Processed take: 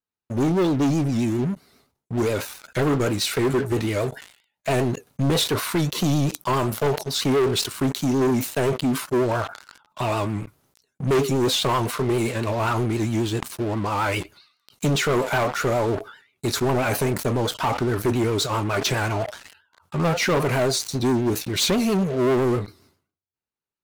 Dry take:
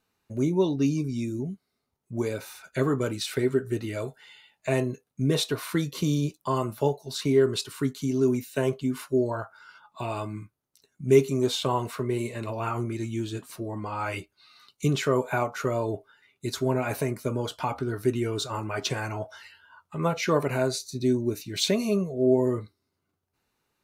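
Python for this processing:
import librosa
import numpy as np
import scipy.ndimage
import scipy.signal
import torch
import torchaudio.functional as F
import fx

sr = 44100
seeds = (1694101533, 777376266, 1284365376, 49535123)

y = fx.leveller(x, sr, passes=5)
y = fx.vibrato(y, sr, rate_hz=7.5, depth_cents=90.0)
y = fx.sustainer(y, sr, db_per_s=120.0)
y = y * librosa.db_to_amplitude(-9.0)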